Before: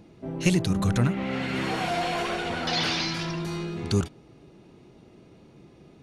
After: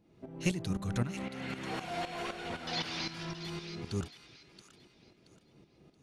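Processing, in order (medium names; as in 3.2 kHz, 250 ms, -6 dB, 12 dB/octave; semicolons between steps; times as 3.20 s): tremolo saw up 3.9 Hz, depth 75%; on a send: feedback echo behind a high-pass 676 ms, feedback 32%, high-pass 1.6 kHz, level -9.5 dB; on the sum: trim -7 dB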